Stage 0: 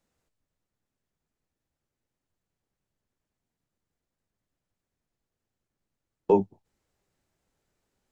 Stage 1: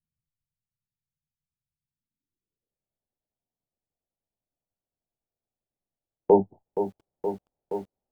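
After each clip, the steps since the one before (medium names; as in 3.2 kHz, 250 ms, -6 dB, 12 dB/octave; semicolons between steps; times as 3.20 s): low-pass sweep 140 Hz -> 720 Hz, 1.81–2.89 s; gate -48 dBFS, range -11 dB; bit-crushed delay 472 ms, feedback 80%, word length 9-bit, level -9.5 dB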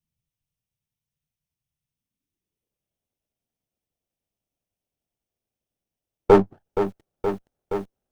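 comb filter that takes the minimum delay 0.35 ms; trim +5 dB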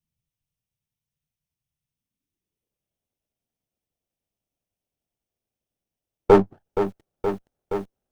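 no audible change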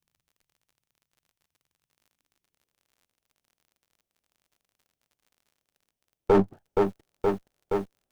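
peak limiter -9.5 dBFS, peak gain reduction 7.5 dB; crackle 50 per s -51 dBFS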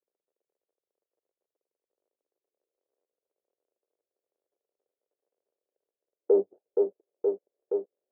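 Butterworth band-pass 460 Hz, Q 2.2; tape noise reduction on one side only encoder only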